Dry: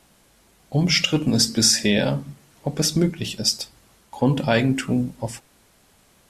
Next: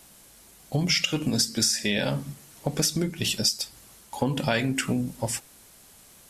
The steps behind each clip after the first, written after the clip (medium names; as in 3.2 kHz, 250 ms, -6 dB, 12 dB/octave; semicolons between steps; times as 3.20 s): treble shelf 5.3 kHz +11.5 dB; compression 8:1, threshold -22 dBFS, peak gain reduction 15 dB; dynamic bell 1.9 kHz, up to +4 dB, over -39 dBFS, Q 0.77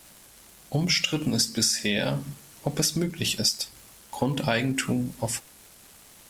crackle 450 per s -41 dBFS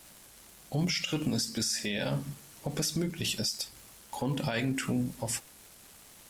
peak limiter -18.5 dBFS, peak gain reduction 8.5 dB; trim -2.5 dB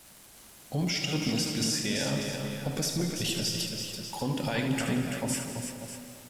multi-tap echo 75/334/592 ms -8/-7/-11.5 dB; reverberation RT60 2.5 s, pre-delay 112 ms, DRR 6 dB